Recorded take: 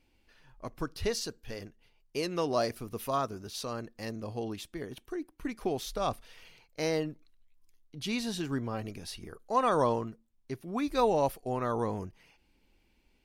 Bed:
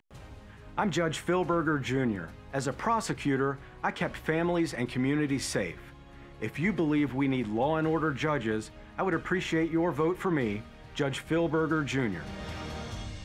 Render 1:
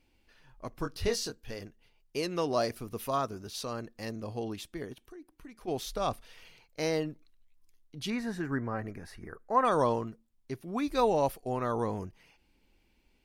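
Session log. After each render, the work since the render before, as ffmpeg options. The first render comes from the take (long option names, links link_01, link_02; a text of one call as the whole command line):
ffmpeg -i in.wav -filter_complex "[0:a]asettb=1/sr,asplit=3[link_01][link_02][link_03];[link_01]atrim=end=0.824[link_04];[link_02]atrim=start=0.82:end=1.35,asetpts=PTS-STARTPTS,afade=type=in:duration=0.004:curve=qsin,afade=type=out:start_time=0.526:duration=0.004:curve=qsin,asplit=2[link_05][link_06];[link_06]adelay=21,volume=-5.5dB[link_07];[link_05][link_07]amix=inputs=2:normalize=0,atrim=end_sample=23373[link_08];[link_03]atrim=start=1.346[link_09];[link_04][link_08]acrossfade=duration=0.004:curve1=hsin:curve2=qsin[link_10];[link_10][link_09]acrossfade=duration=0.004:curve1=qsin:curve2=hsin,asplit=3[link_11][link_12][link_13];[link_11]afade=type=out:start_time=4.92:duration=0.02[link_14];[link_12]acompressor=threshold=-55dB:ratio=2:attack=3.2:release=140:knee=1:detection=peak,afade=type=in:start_time=4.92:duration=0.02,afade=type=out:start_time=5.67:duration=0.02[link_15];[link_13]afade=type=in:start_time=5.67:duration=0.02[link_16];[link_14][link_15][link_16]amix=inputs=3:normalize=0,asettb=1/sr,asplit=3[link_17][link_18][link_19];[link_17]atrim=end=8.104[link_20];[link_18]atrim=start=8.1:end=9.65,asetpts=PTS-STARTPTS,afade=type=in:duration=0.004:curve=qsin,afade=type=out:start_time=1.546:duration=0.004:curve=qsin,highshelf=frequency=2400:width_type=q:width=3:gain=-9.5[link_21];[link_19]atrim=start=9.646[link_22];[link_20][link_21]acrossfade=duration=0.004:curve1=hsin:curve2=qsin[link_23];[link_23][link_22]acrossfade=duration=0.004:curve1=qsin:curve2=hsin" out.wav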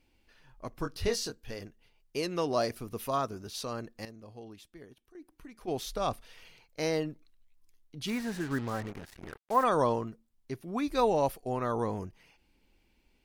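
ffmpeg -i in.wav -filter_complex "[0:a]asettb=1/sr,asplit=3[link_01][link_02][link_03];[link_01]atrim=end=8.074[link_04];[link_02]atrim=start=8.07:end=9.64,asetpts=PTS-STARTPTS,afade=type=in:duration=0.004:curve=qsin,afade=type=out:start_time=1.566:duration=0.004:curve=qsin,acrusher=bits=6:mix=0:aa=0.5[link_05];[link_03]atrim=start=9.636[link_06];[link_04][link_05]acrossfade=duration=0.004:curve1=hsin:curve2=qsin[link_07];[link_07][link_06]acrossfade=duration=0.004:curve1=qsin:curve2=hsin,asplit=3[link_08][link_09][link_10];[link_08]atrim=end=4.052[link_11];[link_09]atrim=start=4.048:end=5.152,asetpts=PTS-STARTPTS,volume=-11dB[link_12];[link_10]atrim=start=5.148[link_13];[link_11][link_12]acrossfade=duration=0.004:curve1=hsin:curve2=hsin[link_14];[link_14][link_13]acrossfade=duration=0.004:curve1=hsin:curve2=hsin" out.wav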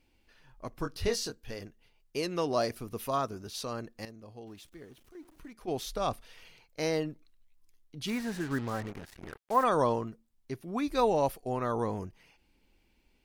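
ffmpeg -i in.wav -filter_complex "[0:a]asettb=1/sr,asplit=3[link_01][link_02][link_03];[link_01]atrim=end=4.474[link_04];[link_02]atrim=start=4.47:end=5.53,asetpts=PTS-STARTPTS,afade=type=in:duration=0.004:curve=qsin,afade=type=out:start_time=1.056:duration=0.004:curve=qsin,aeval=exprs='val(0)+0.5*0.00133*sgn(val(0))':channel_layout=same[link_05];[link_03]atrim=start=5.526[link_06];[link_04][link_05]acrossfade=duration=0.004:curve1=hsin:curve2=qsin[link_07];[link_07][link_06]acrossfade=duration=0.004:curve1=qsin:curve2=hsin" out.wav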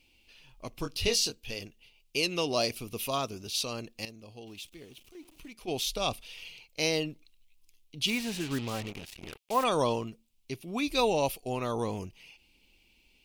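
ffmpeg -i in.wav -af "highshelf=frequency=2100:width_type=q:width=3:gain=7" out.wav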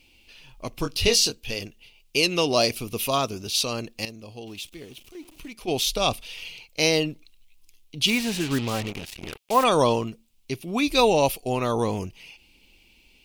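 ffmpeg -i in.wav -af "volume=7.5dB" out.wav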